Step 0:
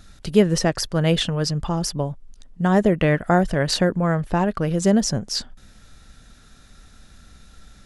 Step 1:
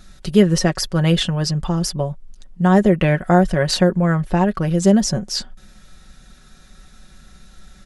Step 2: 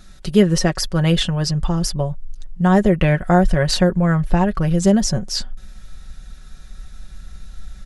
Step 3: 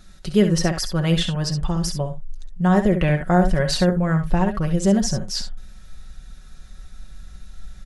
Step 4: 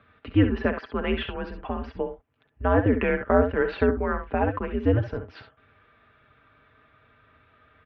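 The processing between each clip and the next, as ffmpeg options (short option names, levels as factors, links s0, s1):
-af "aecho=1:1:5.4:0.56,volume=1.12"
-af "asubboost=boost=4:cutoff=120"
-af "aecho=1:1:56|67:0.178|0.335,volume=0.668"
-af "highpass=f=240:t=q:w=0.5412,highpass=f=240:t=q:w=1.307,lowpass=f=2800:t=q:w=0.5176,lowpass=f=2800:t=q:w=0.7071,lowpass=f=2800:t=q:w=1.932,afreqshift=-110"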